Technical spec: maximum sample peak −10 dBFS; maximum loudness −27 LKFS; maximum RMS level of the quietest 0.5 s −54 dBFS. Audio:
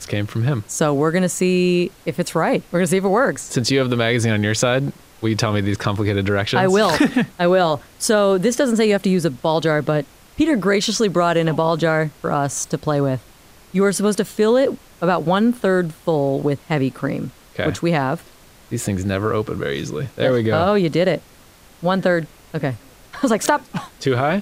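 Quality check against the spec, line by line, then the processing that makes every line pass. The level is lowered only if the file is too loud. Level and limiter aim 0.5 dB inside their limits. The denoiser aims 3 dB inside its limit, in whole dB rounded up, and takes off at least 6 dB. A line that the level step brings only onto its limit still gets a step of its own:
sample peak −3.0 dBFS: out of spec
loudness −19.0 LKFS: out of spec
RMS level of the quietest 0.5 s −47 dBFS: out of spec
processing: level −8.5 dB

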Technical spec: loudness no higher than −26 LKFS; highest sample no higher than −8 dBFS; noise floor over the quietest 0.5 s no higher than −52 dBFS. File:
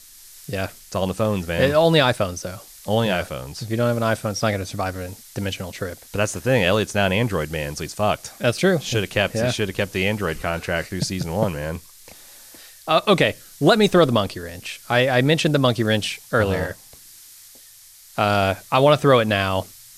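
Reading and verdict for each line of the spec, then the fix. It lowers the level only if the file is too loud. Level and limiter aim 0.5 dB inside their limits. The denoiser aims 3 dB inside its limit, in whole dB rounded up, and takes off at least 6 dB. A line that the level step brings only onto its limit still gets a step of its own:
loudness −21.0 LKFS: out of spec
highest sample −4.0 dBFS: out of spec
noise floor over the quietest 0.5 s −47 dBFS: out of spec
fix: level −5.5 dB

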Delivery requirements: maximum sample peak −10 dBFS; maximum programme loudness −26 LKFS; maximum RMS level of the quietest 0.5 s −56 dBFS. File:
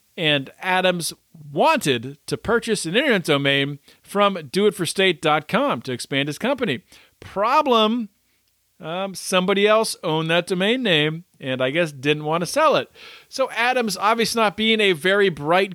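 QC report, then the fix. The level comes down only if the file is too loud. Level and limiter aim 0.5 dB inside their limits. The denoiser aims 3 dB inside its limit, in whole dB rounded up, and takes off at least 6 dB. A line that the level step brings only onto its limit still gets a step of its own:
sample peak −5.5 dBFS: out of spec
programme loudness −20.0 LKFS: out of spec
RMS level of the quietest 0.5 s −65 dBFS: in spec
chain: level −6.5 dB

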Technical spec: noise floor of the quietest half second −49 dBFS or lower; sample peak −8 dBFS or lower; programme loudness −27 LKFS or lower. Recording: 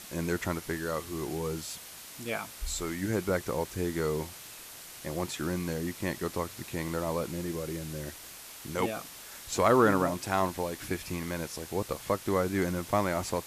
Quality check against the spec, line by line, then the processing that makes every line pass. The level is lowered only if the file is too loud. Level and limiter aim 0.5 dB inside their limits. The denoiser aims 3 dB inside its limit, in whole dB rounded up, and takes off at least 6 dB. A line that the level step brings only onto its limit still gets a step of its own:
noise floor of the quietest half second −47 dBFS: out of spec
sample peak −12.0 dBFS: in spec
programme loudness −32.0 LKFS: in spec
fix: broadband denoise 6 dB, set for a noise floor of −47 dBFS

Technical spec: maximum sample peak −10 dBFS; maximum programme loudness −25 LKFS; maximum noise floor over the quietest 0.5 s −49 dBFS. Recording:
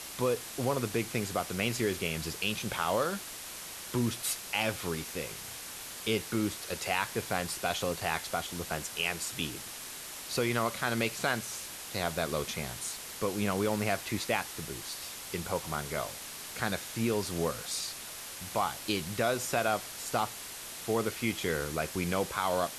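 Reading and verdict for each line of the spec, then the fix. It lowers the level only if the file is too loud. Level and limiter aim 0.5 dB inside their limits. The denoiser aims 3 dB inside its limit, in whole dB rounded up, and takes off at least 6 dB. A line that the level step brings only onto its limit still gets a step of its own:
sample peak −13.5 dBFS: in spec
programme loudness −33.0 LKFS: in spec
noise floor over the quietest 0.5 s −43 dBFS: out of spec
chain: broadband denoise 9 dB, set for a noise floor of −43 dBFS

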